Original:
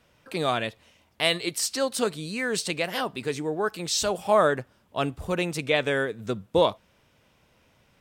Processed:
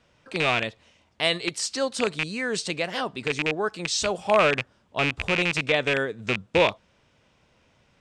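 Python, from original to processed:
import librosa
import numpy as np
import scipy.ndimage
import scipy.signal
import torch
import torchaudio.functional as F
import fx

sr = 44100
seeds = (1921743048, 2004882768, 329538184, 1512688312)

y = fx.rattle_buzz(x, sr, strikes_db=-33.0, level_db=-12.0)
y = scipy.signal.sosfilt(scipy.signal.butter(4, 8100.0, 'lowpass', fs=sr, output='sos'), y)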